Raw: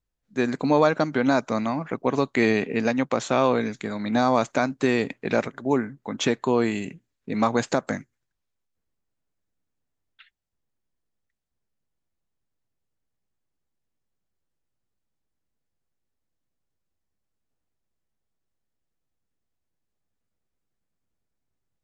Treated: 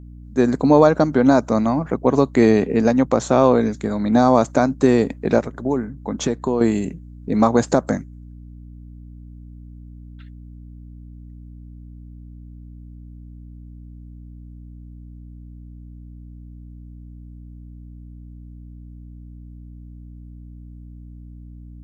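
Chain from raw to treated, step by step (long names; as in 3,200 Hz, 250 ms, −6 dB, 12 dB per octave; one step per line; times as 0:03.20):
parametric band 2,600 Hz −13 dB 1.8 octaves
0:05.38–0:06.61: downward compressor 2 to 1, threshold −30 dBFS, peak gain reduction 7.5 dB
mains hum 60 Hz, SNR 17 dB
level +8 dB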